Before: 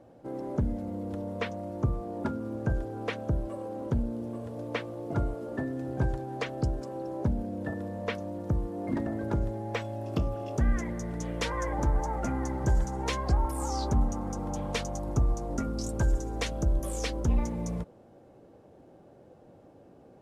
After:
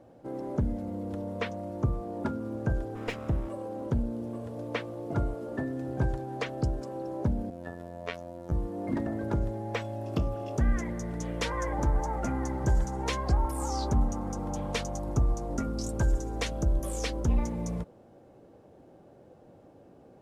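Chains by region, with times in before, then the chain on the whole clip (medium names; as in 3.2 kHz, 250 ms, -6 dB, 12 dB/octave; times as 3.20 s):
2.95–3.49 s: comb filter that takes the minimum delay 0.4 ms + band-stop 4.4 kHz, Q 13
7.50–8.52 s: bass shelf 350 Hz -7 dB + robot voice 86.8 Hz
whole clip: none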